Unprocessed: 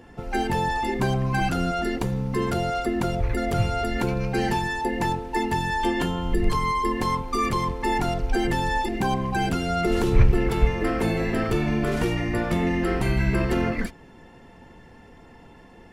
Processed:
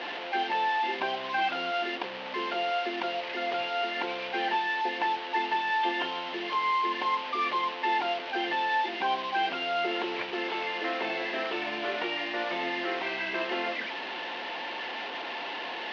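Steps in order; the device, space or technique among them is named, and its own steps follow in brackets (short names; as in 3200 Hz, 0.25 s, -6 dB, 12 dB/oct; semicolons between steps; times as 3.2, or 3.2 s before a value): digital answering machine (BPF 350–3300 Hz; delta modulation 32 kbps, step -28 dBFS; speaker cabinet 430–3900 Hz, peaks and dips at 450 Hz -7 dB, 1300 Hz -6 dB, 2900 Hz +5 dB)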